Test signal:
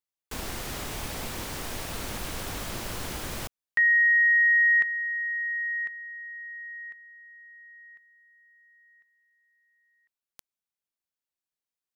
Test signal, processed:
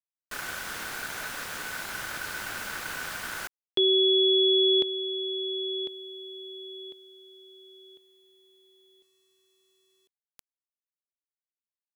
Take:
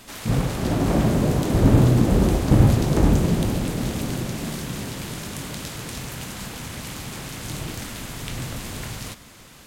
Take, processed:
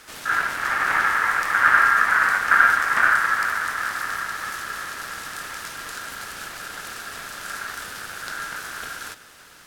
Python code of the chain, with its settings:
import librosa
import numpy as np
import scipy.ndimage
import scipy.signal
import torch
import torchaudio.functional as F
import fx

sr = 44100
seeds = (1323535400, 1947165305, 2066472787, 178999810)

y = x * np.sin(2.0 * np.pi * 1500.0 * np.arange(len(x)) / sr)
y = fx.quant_dither(y, sr, seeds[0], bits=12, dither='none')
y = y * librosa.db_to_amplitude(1.5)